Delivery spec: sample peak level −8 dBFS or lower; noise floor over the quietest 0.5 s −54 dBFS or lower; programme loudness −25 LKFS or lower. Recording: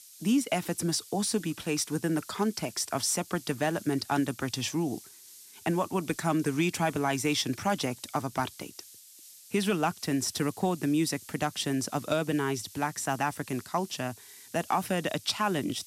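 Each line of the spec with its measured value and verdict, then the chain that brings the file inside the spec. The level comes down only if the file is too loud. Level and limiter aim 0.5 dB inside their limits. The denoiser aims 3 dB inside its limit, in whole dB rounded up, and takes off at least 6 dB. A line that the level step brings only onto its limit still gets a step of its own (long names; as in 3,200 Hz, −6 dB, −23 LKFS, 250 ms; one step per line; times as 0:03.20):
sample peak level −14.5 dBFS: in spec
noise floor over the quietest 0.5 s −52 dBFS: out of spec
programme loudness −30.0 LKFS: in spec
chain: broadband denoise 6 dB, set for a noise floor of −52 dBFS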